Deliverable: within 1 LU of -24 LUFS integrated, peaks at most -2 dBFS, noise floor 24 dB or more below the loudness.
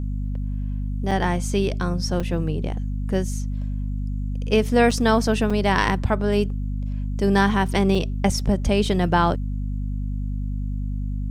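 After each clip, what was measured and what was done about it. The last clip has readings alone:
dropouts 5; longest dropout 4.7 ms; hum 50 Hz; highest harmonic 250 Hz; hum level -23 dBFS; loudness -23.0 LUFS; peak level -4.0 dBFS; loudness target -24.0 LUFS
-> interpolate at 1.11/2.20/4.91/5.50/7.95 s, 4.7 ms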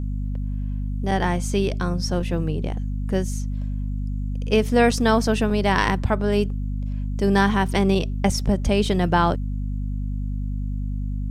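dropouts 0; hum 50 Hz; highest harmonic 250 Hz; hum level -23 dBFS
-> de-hum 50 Hz, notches 5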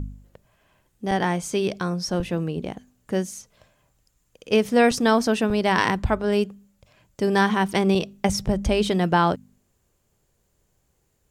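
hum not found; loudness -23.0 LUFS; peak level -5.5 dBFS; loudness target -24.0 LUFS
-> trim -1 dB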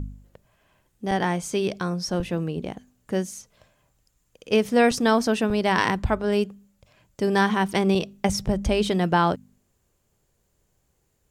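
loudness -24.0 LUFS; peak level -6.5 dBFS; noise floor -70 dBFS

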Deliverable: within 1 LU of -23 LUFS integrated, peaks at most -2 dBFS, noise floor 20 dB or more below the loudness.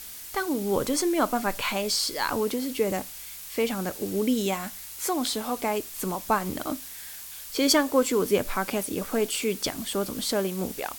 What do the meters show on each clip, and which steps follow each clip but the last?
noise floor -41 dBFS; noise floor target -47 dBFS; loudness -27.0 LUFS; peak level -8.0 dBFS; loudness target -23.0 LUFS
-> noise reduction 6 dB, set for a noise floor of -41 dBFS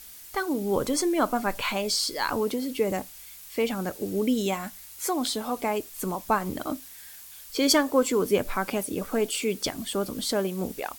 noise floor -46 dBFS; noise floor target -48 dBFS
-> noise reduction 6 dB, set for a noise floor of -46 dBFS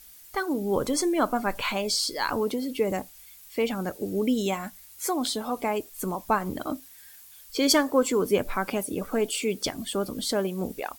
noise floor -50 dBFS; loudness -27.5 LUFS; peak level -8.0 dBFS; loudness target -23.0 LUFS
-> trim +4.5 dB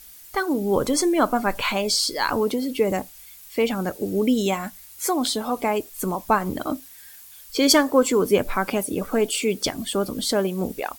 loudness -23.0 LUFS; peak level -3.5 dBFS; noise floor -45 dBFS

